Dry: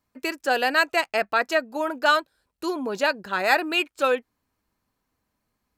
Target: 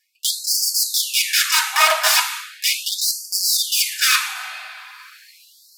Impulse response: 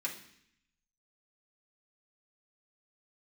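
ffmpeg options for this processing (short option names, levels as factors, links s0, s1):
-filter_complex "[0:a]acontrast=31,aeval=exprs='(mod(7.08*val(0)+1,2)-1)/7.08':c=same[s0];[1:a]atrim=start_sample=2205,asetrate=29106,aresample=44100[s1];[s0][s1]afir=irnorm=-1:irlink=0,areverse,acompressor=mode=upward:threshold=0.0447:ratio=2.5,areverse,afftfilt=real='re*gte(b*sr/1024,590*pow(4400/590,0.5+0.5*sin(2*PI*0.38*pts/sr)))':imag='im*gte(b*sr/1024,590*pow(4400/590,0.5+0.5*sin(2*PI*0.38*pts/sr)))':win_size=1024:overlap=0.75,volume=1.68"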